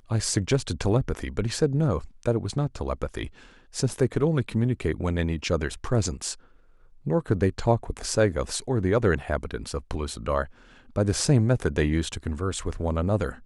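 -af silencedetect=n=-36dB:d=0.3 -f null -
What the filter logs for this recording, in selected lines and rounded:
silence_start: 3.28
silence_end: 3.74 | silence_duration: 0.46
silence_start: 6.34
silence_end: 7.06 | silence_duration: 0.72
silence_start: 10.46
silence_end: 10.96 | silence_duration: 0.50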